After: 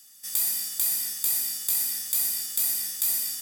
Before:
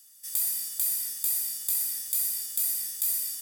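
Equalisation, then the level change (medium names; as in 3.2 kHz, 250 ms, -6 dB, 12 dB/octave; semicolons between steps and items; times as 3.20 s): treble shelf 7.5 kHz -6 dB; peaking EQ 9.7 kHz -2.5 dB 0.37 oct; +7.5 dB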